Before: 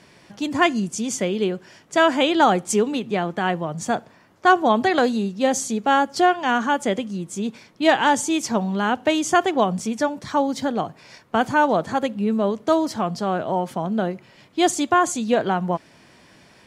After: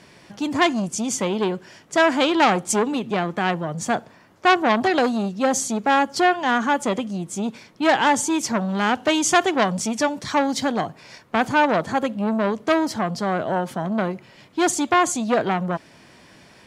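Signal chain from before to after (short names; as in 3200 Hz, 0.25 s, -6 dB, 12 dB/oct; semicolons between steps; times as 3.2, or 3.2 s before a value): 8.69–10.85 bell 5600 Hz +5 dB 2.8 oct; core saturation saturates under 1700 Hz; gain +2 dB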